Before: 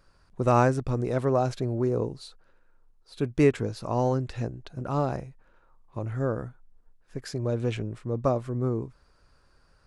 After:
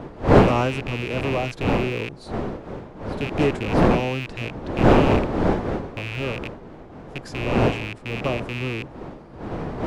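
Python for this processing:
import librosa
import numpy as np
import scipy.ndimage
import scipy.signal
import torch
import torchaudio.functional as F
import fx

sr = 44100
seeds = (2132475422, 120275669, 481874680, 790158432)

y = fx.rattle_buzz(x, sr, strikes_db=-35.0, level_db=-18.0)
y = fx.dmg_wind(y, sr, seeds[0], corner_hz=500.0, level_db=-22.0)
y = fx.doppler_dist(y, sr, depth_ms=0.29)
y = F.gain(torch.from_numpy(y), -1.5).numpy()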